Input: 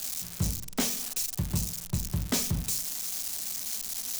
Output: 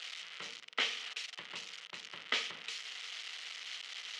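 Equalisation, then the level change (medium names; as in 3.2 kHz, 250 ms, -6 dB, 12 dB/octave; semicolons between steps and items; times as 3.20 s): cabinet simulation 290–3200 Hz, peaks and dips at 470 Hz +9 dB, 1.3 kHz +7 dB, 2 kHz +8 dB, 3 kHz +7 dB; differentiator; +9.5 dB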